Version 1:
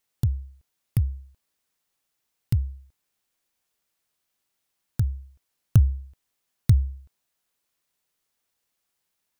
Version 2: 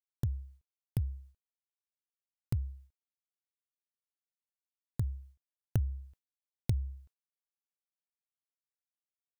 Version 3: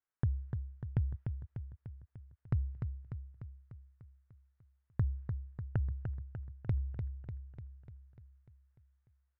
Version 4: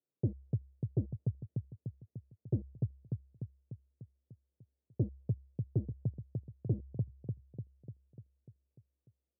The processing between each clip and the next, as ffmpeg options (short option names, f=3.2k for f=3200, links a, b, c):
-af "agate=range=-33dB:threshold=-43dB:ratio=3:detection=peak,acompressor=threshold=-21dB:ratio=3,volume=-7dB"
-filter_complex "[0:a]alimiter=limit=-21.5dB:level=0:latency=1:release=324,lowpass=f=1.6k:t=q:w=2,asplit=2[a][b];[b]aecho=0:1:297|594|891|1188|1485|1782|2079|2376:0.473|0.279|0.165|0.0972|0.0573|0.0338|0.02|0.0118[c];[a][c]amix=inputs=2:normalize=0,volume=3dB"
-af "volume=31dB,asoftclip=hard,volume=-31dB,asuperpass=centerf=250:order=8:qfactor=0.56,volume=9dB"